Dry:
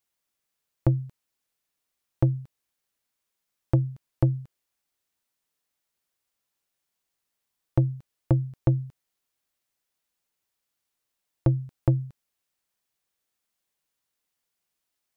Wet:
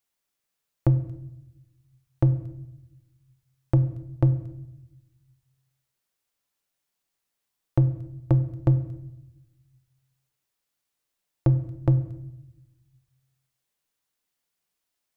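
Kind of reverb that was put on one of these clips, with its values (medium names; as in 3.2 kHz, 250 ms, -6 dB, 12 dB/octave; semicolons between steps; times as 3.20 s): simulated room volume 310 m³, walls mixed, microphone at 0.34 m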